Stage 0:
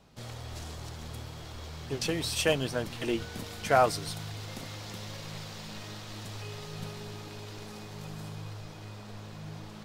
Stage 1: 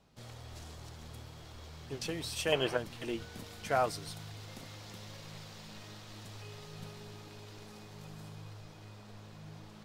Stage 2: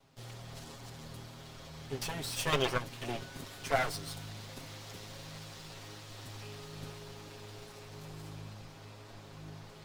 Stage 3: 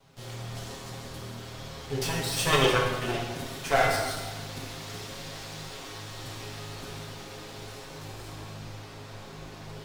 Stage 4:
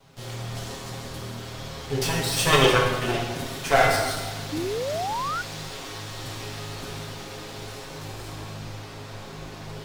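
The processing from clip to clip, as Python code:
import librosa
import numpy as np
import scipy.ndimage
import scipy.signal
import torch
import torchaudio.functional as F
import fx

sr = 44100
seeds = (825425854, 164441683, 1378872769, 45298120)

y1 = fx.spec_box(x, sr, start_s=2.52, length_s=0.25, low_hz=320.0, high_hz=3300.0, gain_db=11)
y1 = F.gain(torch.from_numpy(y1), -7.0).numpy()
y2 = fx.lower_of_two(y1, sr, delay_ms=7.4)
y2 = F.gain(torch.from_numpy(y2), 3.0).numpy()
y3 = fx.rev_plate(y2, sr, seeds[0], rt60_s=1.3, hf_ratio=0.8, predelay_ms=0, drr_db=-1.5)
y3 = F.gain(torch.from_numpy(y3), 4.5).numpy()
y4 = fx.spec_paint(y3, sr, seeds[1], shape='rise', start_s=4.52, length_s=0.9, low_hz=290.0, high_hz=1500.0, level_db=-33.0)
y4 = F.gain(torch.from_numpy(y4), 4.5).numpy()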